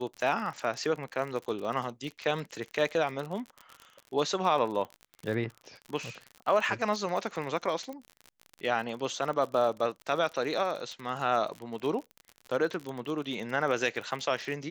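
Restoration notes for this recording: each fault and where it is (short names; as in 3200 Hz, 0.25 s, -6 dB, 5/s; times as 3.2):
crackle 45/s -35 dBFS
7.93 pop -29 dBFS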